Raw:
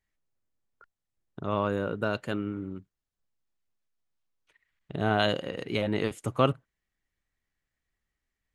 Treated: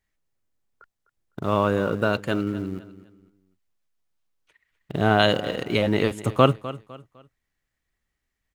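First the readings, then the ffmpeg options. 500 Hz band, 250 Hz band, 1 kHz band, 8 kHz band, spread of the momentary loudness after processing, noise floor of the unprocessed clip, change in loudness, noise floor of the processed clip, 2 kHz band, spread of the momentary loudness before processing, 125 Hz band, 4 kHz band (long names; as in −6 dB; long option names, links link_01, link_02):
+6.5 dB, +6.5 dB, +6.5 dB, +6.5 dB, 14 LU, below −85 dBFS, +6.5 dB, −81 dBFS, +6.5 dB, 13 LU, +7.0 dB, +7.0 dB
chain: -filter_complex "[0:a]asplit=2[link_01][link_02];[link_02]aeval=exprs='val(0)*gte(abs(val(0)),0.0133)':channel_layout=same,volume=-9dB[link_03];[link_01][link_03]amix=inputs=2:normalize=0,aecho=1:1:253|506|759:0.158|0.0523|0.0173,volume=4dB"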